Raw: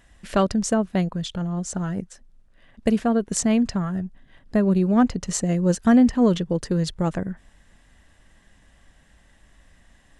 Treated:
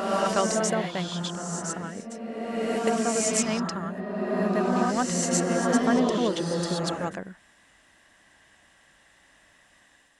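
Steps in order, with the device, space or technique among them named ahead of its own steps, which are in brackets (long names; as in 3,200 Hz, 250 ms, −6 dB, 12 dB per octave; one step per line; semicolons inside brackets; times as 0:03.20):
ghost voice (reversed playback; convolution reverb RT60 2.5 s, pre-delay 100 ms, DRR −3 dB; reversed playback; high-pass filter 720 Hz 6 dB per octave)
level −1 dB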